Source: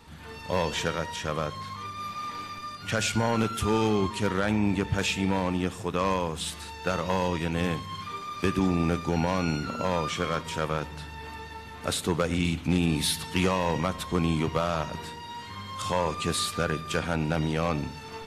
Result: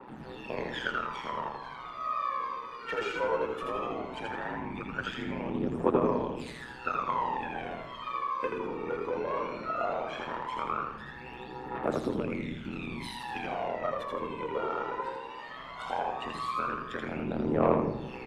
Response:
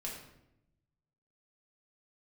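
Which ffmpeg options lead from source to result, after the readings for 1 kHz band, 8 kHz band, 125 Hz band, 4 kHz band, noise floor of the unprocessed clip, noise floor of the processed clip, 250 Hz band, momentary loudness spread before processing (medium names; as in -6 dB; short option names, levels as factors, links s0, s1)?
-1.5 dB, under -20 dB, -12.5 dB, -12.0 dB, -42 dBFS, -44 dBFS, -7.5 dB, 11 LU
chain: -filter_complex "[0:a]aeval=exprs='val(0)*sin(2*PI*62*n/s)':c=same,acompressor=threshold=0.0316:ratio=4,aphaser=in_gain=1:out_gain=1:delay=2.2:decay=0.78:speed=0.17:type=triangular,acrossover=split=230 3100:gain=0.0631 1 0.112[s0][s1][s2];[s0][s1][s2]amix=inputs=3:normalize=0,asplit=5[s3][s4][s5][s6][s7];[s4]adelay=81,afreqshift=-69,volume=0.708[s8];[s5]adelay=162,afreqshift=-138,volume=0.211[s9];[s6]adelay=243,afreqshift=-207,volume=0.0638[s10];[s7]adelay=324,afreqshift=-276,volume=0.0191[s11];[s3][s8][s9][s10][s11]amix=inputs=5:normalize=0,asplit=2[s12][s13];[1:a]atrim=start_sample=2205,adelay=90[s14];[s13][s14]afir=irnorm=-1:irlink=0,volume=0.282[s15];[s12][s15]amix=inputs=2:normalize=0,adynamicequalizer=threshold=0.00501:dfrequency=1900:dqfactor=0.7:tfrequency=1900:tqfactor=0.7:attack=5:release=100:ratio=0.375:range=3.5:mode=cutabove:tftype=highshelf"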